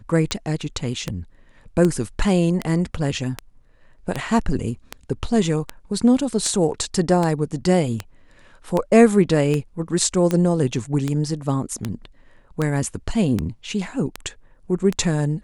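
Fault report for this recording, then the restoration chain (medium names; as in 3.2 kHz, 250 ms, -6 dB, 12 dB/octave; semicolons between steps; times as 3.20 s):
tick 78 rpm -9 dBFS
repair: de-click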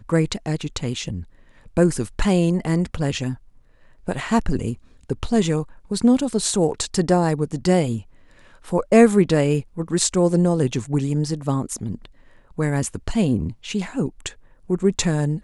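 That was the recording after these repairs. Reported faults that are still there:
nothing left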